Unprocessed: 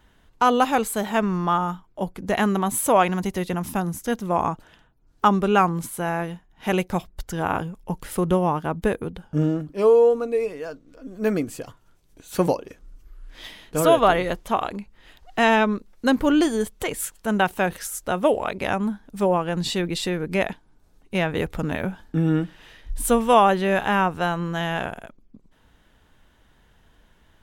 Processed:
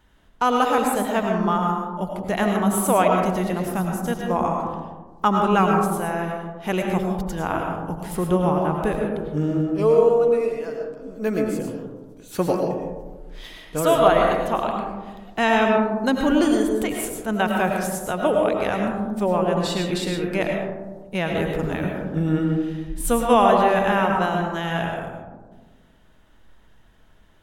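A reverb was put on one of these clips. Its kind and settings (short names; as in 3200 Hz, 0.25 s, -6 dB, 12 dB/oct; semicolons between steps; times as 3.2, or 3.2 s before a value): digital reverb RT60 1.4 s, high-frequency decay 0.25×, pre-delay 65 ms, DRR 1 dB; gain -2 dB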